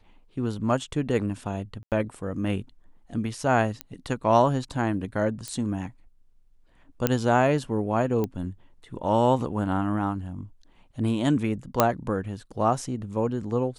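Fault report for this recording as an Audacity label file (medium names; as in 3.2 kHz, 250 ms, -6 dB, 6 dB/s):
1.830000	1.920000	dropout 88 ms
3.810000	3.810000	pop -15 dBFS
5.480000	5.480000	pop -18 dBFS
7.070000	7.070000	pop -6 dBFS
8.240000	8.240000	pop -16 dBFS
11.800000	11.800000	pop -3 dBFS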